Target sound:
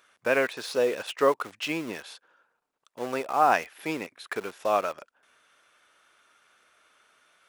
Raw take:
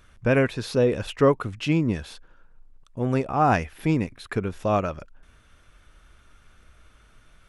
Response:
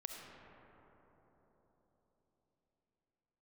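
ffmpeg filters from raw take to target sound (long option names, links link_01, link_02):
-filter_complex "[0:a]asplit=2[link_01][link_02];[link_02]acrusher=bits=4:mix=0:aa=0.000001,volume=-11.5dB[link_03];[link_01][link_03]amix=inputs=2:normalize=0,highpass=520,volume=-1.5dB"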